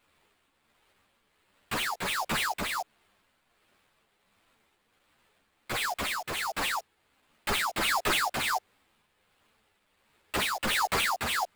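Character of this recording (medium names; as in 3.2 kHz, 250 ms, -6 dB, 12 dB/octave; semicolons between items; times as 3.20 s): a quantiser's noise floor 12-bit, dither triangular; tremolo triangle 1.4 Hz, depth 45%; aliases and images of a low sample rate 6 kHz, jitter 20%; a shimmering, thickened sound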